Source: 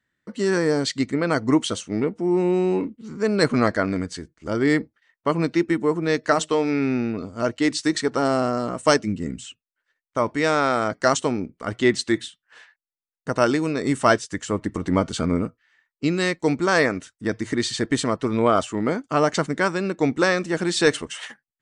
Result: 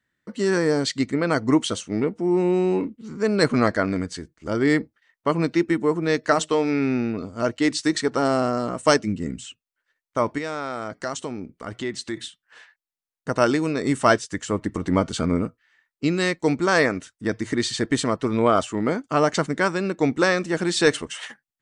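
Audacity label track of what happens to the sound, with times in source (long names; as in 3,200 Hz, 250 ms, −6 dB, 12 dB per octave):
10.380000	12.170000	downward compressor 2 to 1, threshold −32 dBFS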